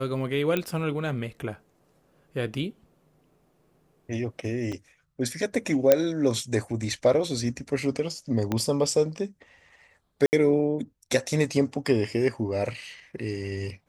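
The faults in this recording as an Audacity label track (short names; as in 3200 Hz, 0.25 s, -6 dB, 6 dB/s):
0.570000	0.570000	pop -12 dBFS
4.720000	4.730000	gap 5.2 ms
5.920000	5.920000	pop -4 dBFS
8.520000	8.520000	pop -13 dBFS
10.260000	10.330000	gap 69 ms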